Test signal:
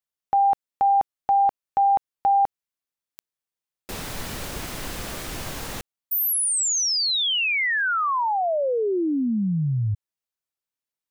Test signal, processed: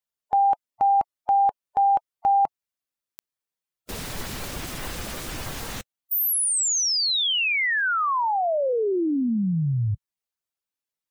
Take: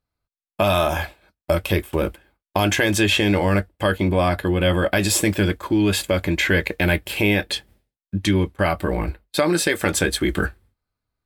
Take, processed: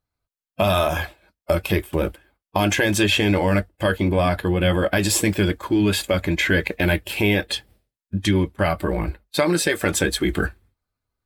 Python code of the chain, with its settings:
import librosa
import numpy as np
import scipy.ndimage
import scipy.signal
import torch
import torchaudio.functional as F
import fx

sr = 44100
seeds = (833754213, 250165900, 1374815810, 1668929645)

y = fx.spec_quant(x, sr, step_db=15)